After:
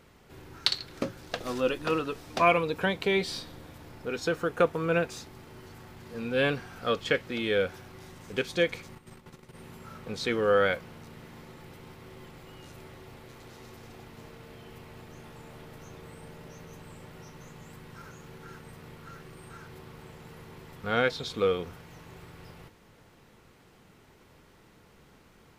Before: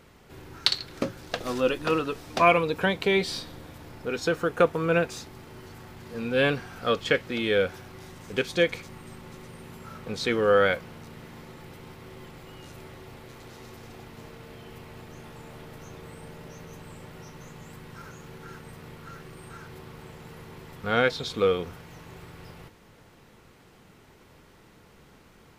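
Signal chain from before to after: 8.95–9.56 level quantiser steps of 11 dB; gain -3 dB

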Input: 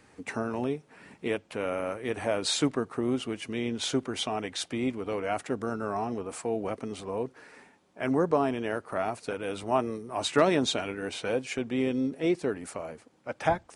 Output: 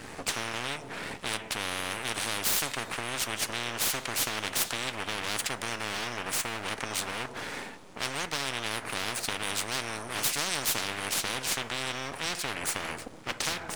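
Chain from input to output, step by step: half-wave rectifier; two-slope reverb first 0.31 s, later 1.6 s, DRR 16 dB; spectral compressor 10:1

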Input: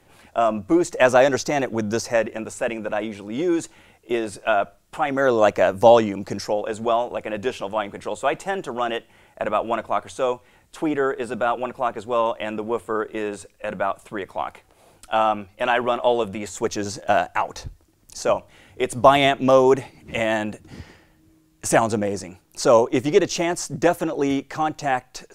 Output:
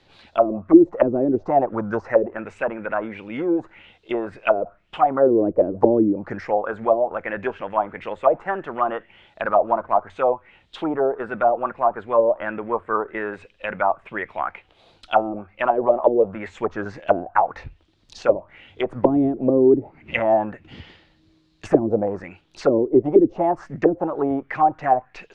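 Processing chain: 9.44–10.1 median filter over 15 samples; envelope low-pass 320–4200 Hz down, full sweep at -14 dBFS; gain -2.5 dB

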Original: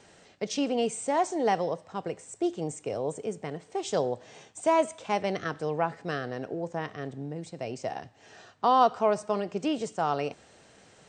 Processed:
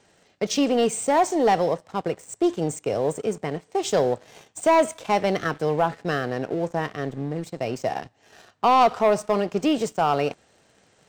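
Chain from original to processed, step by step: sample leveller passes 2

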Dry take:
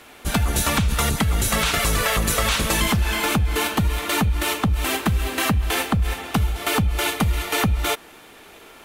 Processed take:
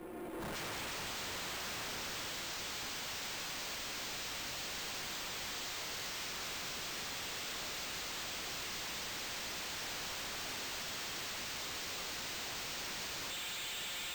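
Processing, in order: band-pass sweep 330 Hz -> 3600 Hz, 1.05–1.55; non-linear reverb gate 0.39 s flat, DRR -6 dB; granular stretch 1.6×, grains 30 ms; AGC gain up to 12 dB; wavefolder -32 dBFS; high shelf 10000 Hz +11.5 dB; one-sided clip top -35.5 dBFS; tube stage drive 54 dB, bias 0.65; careless resampling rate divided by 4×, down none, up hold; gain +13 dB

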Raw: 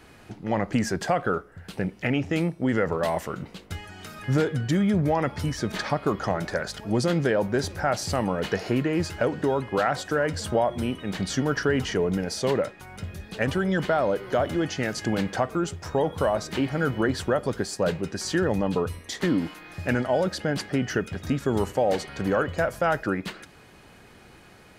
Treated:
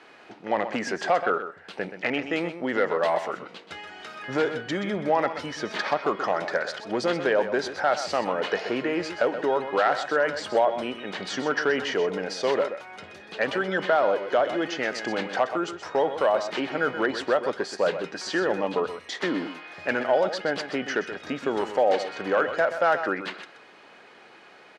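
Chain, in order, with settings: hard clip -14.5 dBFS, distortion -26 dB; BPF 420–4200 Hz; echo 0.127 s -10.5 dB; gain +3 dB

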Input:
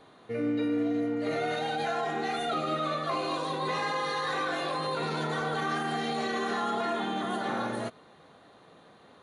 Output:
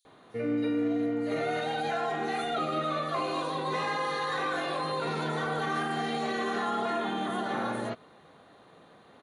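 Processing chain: bands offset in time highs, lows 50 ms, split 5300 Hz

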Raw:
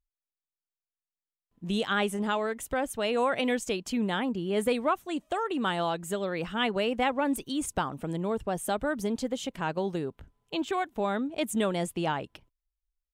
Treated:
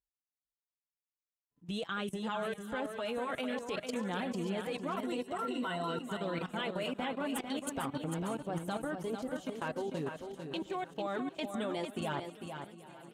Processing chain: regenerating reverse delay 0.38 s, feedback 66%, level -11 dB; 4.97–5.99 ripple EQ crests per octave 2, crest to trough 13 dB; flange 0.47 Hz, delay 5.2 ms, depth 3.3 ms, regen +11%; 6.83–7.36 notch comb 450 Hz; level quantiser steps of 18 dB; HPF 49 Hz; on a send: feedback echo 0.448 s, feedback 18%, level -7 dB

